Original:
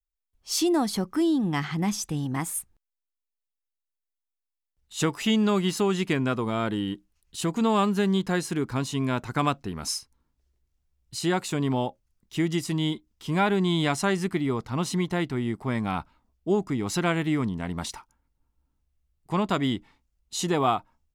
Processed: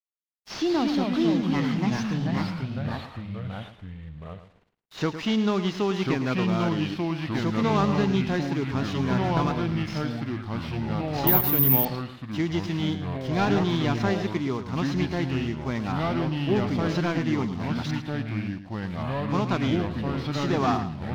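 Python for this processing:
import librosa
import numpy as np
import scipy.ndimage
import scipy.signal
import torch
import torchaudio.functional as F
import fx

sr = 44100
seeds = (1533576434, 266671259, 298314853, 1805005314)

y = fx.cvsd(x, sr, bps=32000)
y = fx.level_steps(y, sr, step_db=13, at=(9.33, 9.97))
y = fx.lowpass(y, sr, hz=2200.0, slope=12, at=(15.92, 16.56))
y = np.sign(y) * np.maximum(np.abs(y) - 10.0 ** (-53.0 / 20.0), 0.0)
y = fx.echo_pitch(y, sr, ms=92, semitones=-3, count=3, db_per_echo=-3.0)
y = fx.echo_feedback(y, sr, ms=109, feedback_pct=20, wet_db=-11.5)
y = fx.resample_bad(y, sr, factor=3, down='none', up='zero_stuff', at=(11.27, 11.85))
y = y * librosa.db_to_amplitude(-1.0)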